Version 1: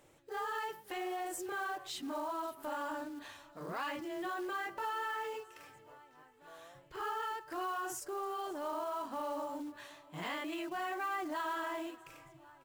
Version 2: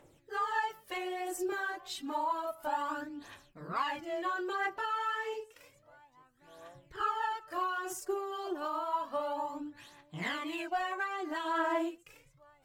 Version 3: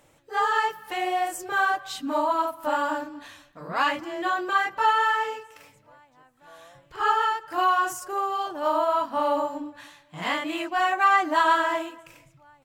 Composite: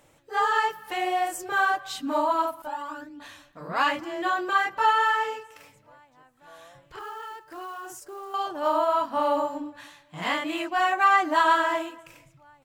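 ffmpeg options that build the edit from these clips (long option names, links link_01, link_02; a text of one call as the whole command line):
ffmpeg -i take0.wav -i take1.wav -i take2.wav -filter_complex "[2:a]asplit=3[link_01][link_02][link_03];[link_01]atrim=end=2.622[link_04];[1:a]atrim=start=2.618:end=3.202[link_05];[link_02]atrim=start=3.198:end=6.992[link_06];[0:a]atrim=start=6.988:end=8.342[link_07];[link_03]atrim=start=8.338[link_08];[link_04][link_05]acrossfade=duration=0.004:curve1=hsin:curve2=hsin[link_09];[link_09][link_06]acrossfade=duration=0.004:curve1=hsin:curve2=hsin[link_10];[link_10][link_07]acrossfade=duration=0.004:curve1=hsin:curve2=hsin[link_11];[link_11][link_08]acrossfade=duration=0.004:curve1=hsin:curve2=hsin" out.wav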